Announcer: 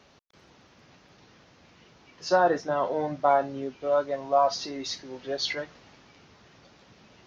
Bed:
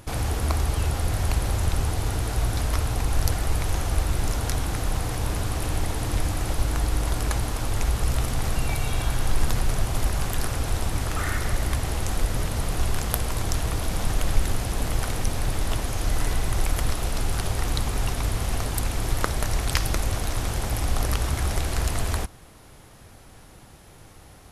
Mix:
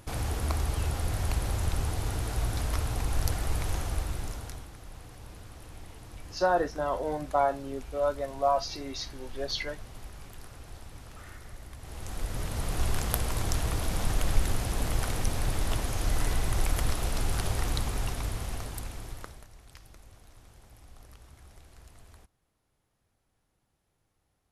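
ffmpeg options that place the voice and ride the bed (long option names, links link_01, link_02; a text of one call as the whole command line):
ffmpeg -i stem1.wav -i stem2.wav -filter_complex "[0:a]adelay=4100,volume=-3.5dB[link_01];[1:a]volume=11.5dB,afade=type=out:start_time=3.71:duration=0.99:silence=0.177828,afade=type=in:start_time=11.77:duration=1.13:silence=0.141254,afade=type=out:start_time=17.54:duration=1.94:silence=0.0595662[link_02];[link_01][link_02]amix=inputs=2:normalize=0" out.wav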